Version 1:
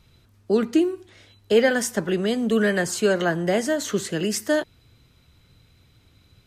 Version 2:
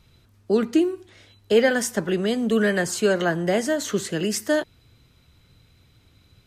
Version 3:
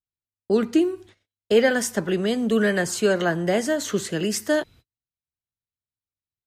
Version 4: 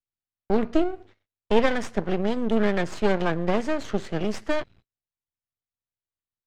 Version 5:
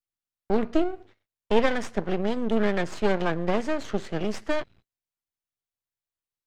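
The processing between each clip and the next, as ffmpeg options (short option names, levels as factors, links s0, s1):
-af anull
-af "agate=range=0.00562:threshold=0.00501:ratio=16:detection=peak"
-af "aeval=exprs='max(val(0),0)':c=same,adynamicsmooth=sensitivity=1:basefreq=3500,volume=1.19"
-af "equalizer=f=66:w=0.45:g=-2.5,volume=0.891"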